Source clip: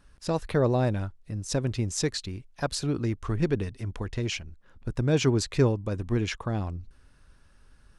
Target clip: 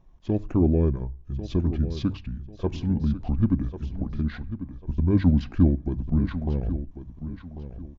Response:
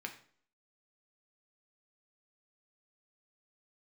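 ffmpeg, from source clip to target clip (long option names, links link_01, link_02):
-filter_complex "[0:a]tiltshelf=frequency=1300:gain=9.5,bandreject=frequency=50:width_type=h:width=6,bandreject=frequency=100:width_type=h:width=6,bandreject=frequency=150:width_type=h:width=6,bandreject=frequency=200:width_type=h:width=6,asetrate=28595,aresample=44100,atempo=1.54221,aecho=1:1:1094|2188|3282:0.251|0.0728|0.0211,asplit=2[link_01][link_02];[1:a]atrim=start_sample=2205[link_03];[link_02][link_03]afir=irnorm=-1:irlink=0,volume=-12dB[link_04];[link_01][link_04]amix=inputs=2:normalize=0,volume=-5dB"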